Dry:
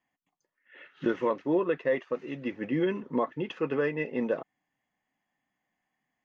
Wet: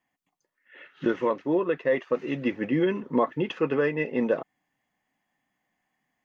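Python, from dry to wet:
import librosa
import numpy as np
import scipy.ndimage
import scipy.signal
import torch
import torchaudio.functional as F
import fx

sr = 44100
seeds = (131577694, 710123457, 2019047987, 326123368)

y = fx.rider(x, sr, range_db=4, speed_s=0.5)
y = F.gain(torch.from_numpy(y), 4.0).numpy()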